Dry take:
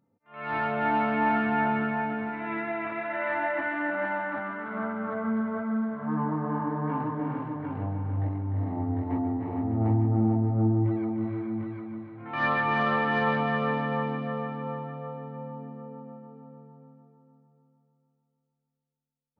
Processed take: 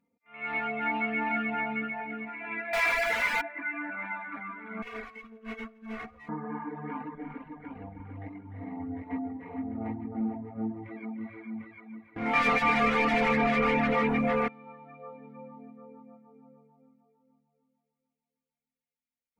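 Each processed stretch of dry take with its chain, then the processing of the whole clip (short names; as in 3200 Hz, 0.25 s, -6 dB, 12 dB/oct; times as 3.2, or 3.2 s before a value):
2.73–3.41 switching spikes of -27.5 dBFS + steep high-pass 490 Hz 48 dB/oct + overdrive pedal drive 32 dB, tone 2500 Hz, clips at -16.5 dBFS
4.82–6.29 minimum comb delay 8.3 ms + comb 2.7 ms + negative-ratio compressor -36 dBFS, ratio -0.5
7.15–8 HPF 52 Hz + AM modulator 170 Hz, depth 20%
12.16–14.48 sample leveller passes 5 + LPF 1200 Hz 6 dB/oct
whole clip: reverb removal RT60 1.1 s; bell 2200 Hz +14.5 dB 0.53 oct; comb 4.2 ms, depth 84%; gain -7.5 dB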